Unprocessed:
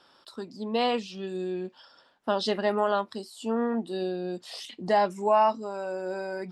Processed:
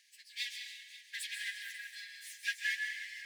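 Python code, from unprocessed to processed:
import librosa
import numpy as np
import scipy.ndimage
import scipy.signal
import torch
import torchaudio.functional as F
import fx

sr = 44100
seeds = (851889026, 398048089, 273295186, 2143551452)

y = np.abs(x)
y = fx.stretch_vocoder_free(y, sr, factor=0.5)
y = fx.brickwall_highpass(y, sr, low_hz=1600.0)
y = y + 10.0 ** (-16.5 / 20.0) * np.pad(y, (int(536 * sr / 1000.0), 0))[:len(y)]
y = fx.rev_plate(y, sr, seeds[0], rt60_s=1.4, hf_ratio=0.75, predelay_ms=120, drr_db=3.5)
y = F.gain(torch.from_numpy(y), 1.0).numpy()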